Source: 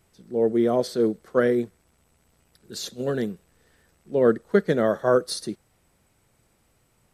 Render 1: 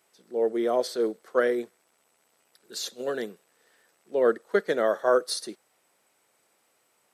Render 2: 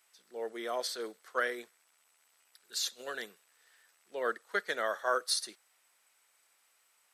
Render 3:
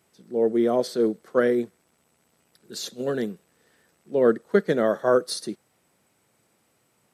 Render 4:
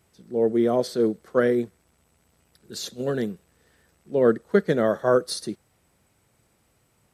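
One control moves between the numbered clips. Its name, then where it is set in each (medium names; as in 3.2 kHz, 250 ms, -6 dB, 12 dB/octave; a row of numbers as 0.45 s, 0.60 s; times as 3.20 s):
high-pass, cutoff frequency: 450 Hz, 1.2 kHz, 170 Hz, 49 Hz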